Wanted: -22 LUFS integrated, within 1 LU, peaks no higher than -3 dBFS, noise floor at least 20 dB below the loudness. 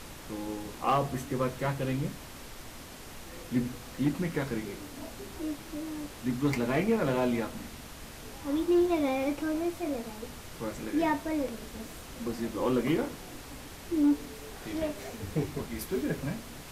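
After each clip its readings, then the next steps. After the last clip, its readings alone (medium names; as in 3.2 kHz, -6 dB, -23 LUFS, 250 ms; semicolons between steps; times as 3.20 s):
clipped samples 0.3%; clipping level -19.0 dBFS; noise floor -46 dBFS; noise floor target -52 dBFS; loudness -31.5 LUFS; peak level -19.0 dBFS; loudness target -22.0 LUFS
-> clip repair -19 dBFS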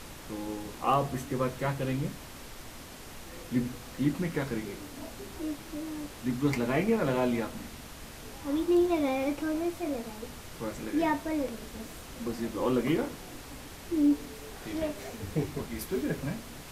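clipped samples 0.0%; noise floor -46 dBFS; noise floor target -52 dBFS
-> noise print and reduce 6 dB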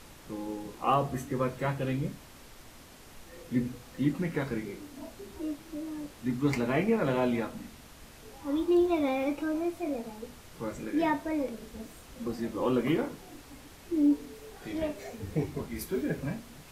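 noise floor -51 dBFS; noise floor target -52 dBFS
-> noise print and reduce 6 dB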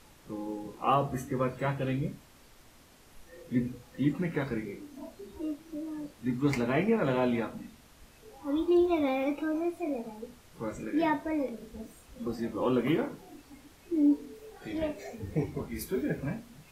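noise floor -57 dBFS; loudness -31.5 LUFS; peak level -13.5 dBFS; loudness target -22.0 LUFS
-> trim +9.5 dB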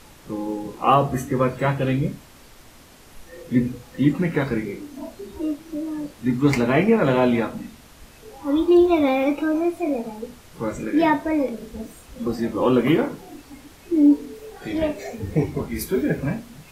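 loudness -22.0 LUFS; peak level -4.0 dBFS; noise floor -48 dBFS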